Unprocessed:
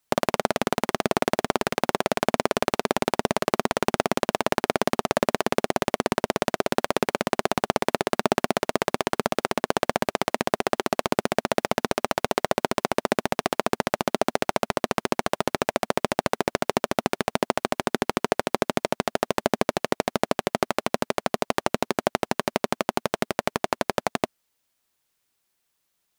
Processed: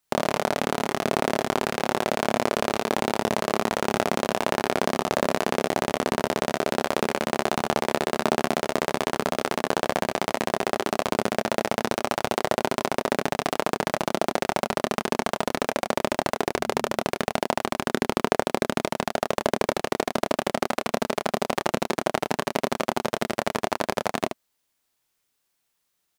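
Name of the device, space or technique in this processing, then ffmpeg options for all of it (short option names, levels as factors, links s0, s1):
slapback doubling: -filter_complex "[0:a]asettb=1/sr,asplit=3[s0][s1][s2];[s0]atrim=end=16.514[s3];[s1]atrim=start=16.51:end=16.92,asetpts=PTS-STARTPTS,afade=t=in:d=0.004:c=qsin,afade=t=out:st=0.406:d=0.004:c=qsin,bandreject=f=73.16:t=h:w=4,bandreject=f=146.32:t=h:w=4,bandreject=f=219.48:t=h:w=4[s4];[s2]atrim=start=16.916[s5];[s3][s4]acrossfade=d=0.004:c1=hsin:c2=qsin[s6];[s6][s5]acrossfade=d=0.004:c1=qsin:c2=hsin,asplit=3[s7][s8][s9];[s8]adelay=27,volume=0.562[s10];[s9]adelay=75,volume=0.447[s11];[s7][s10][s11]amix=inputs=3:normalize=0,volume=0.794"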